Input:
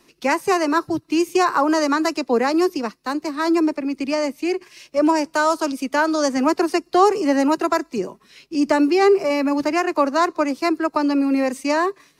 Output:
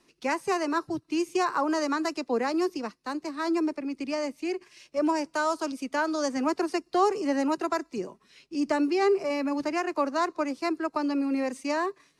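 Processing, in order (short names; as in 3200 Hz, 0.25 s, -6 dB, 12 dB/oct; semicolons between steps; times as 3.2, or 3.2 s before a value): LPF 11000 Hz 24 dB/oct; gain -8.5 dB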